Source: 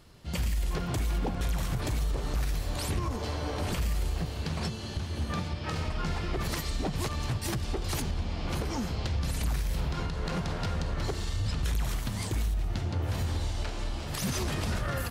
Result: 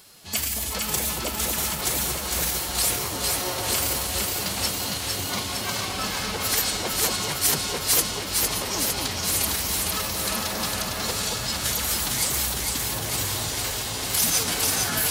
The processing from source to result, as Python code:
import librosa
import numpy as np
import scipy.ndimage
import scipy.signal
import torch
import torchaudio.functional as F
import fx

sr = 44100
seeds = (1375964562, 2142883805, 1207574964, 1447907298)

y = fx.pitch_keep_formants(x, sr, semitones=3.5)
y = fx.riaa(y, sr, side='recording')
y = fx.echo_alternate(y, sr, ms=228, hz=990.0, feedback_pct=85, wet_db=-2)
y = y * 10.0 ** (4.5 / 20.0)